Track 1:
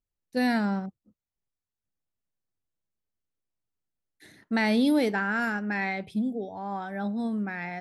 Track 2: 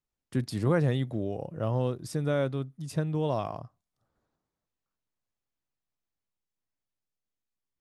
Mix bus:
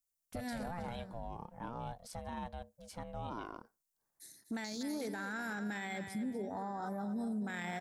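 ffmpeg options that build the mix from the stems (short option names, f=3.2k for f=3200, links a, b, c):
-filter_complex "[0:a]afwtdn=0.0158,acompressor=threshold=-33dB:ratio=10,aexciter=amount=12:drive=6.8:freq=4.5k,volume=0dB,asplit=2[a][b];[b]volume=-11.5dB[c];[1:a]highpass=260,aeval=exprs='val(0)*sin(2*PI*350*n/s)':c=same,volume=-5.5dB,asplit=2[d][e];[e]apad=whole_len=344327[f];[a][f]sidechaincompress=threshold=-48dB:ratio=8:attack=22:release=141[g];[c]aecho=0:1:244|488|732|976:1|0.27|0.0729|0.0197[h];[g][d][h]amix=inputs=3:normalize=0,alimiter=level_in=8dB:limit=-24dB:level=0:latency=1:release=11,volume=-8dB"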